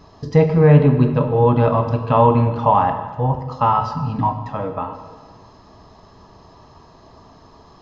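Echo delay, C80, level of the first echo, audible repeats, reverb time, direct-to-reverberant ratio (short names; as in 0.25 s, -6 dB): none, 10.0 dB, none, none, 1.6 s, 6.5 dB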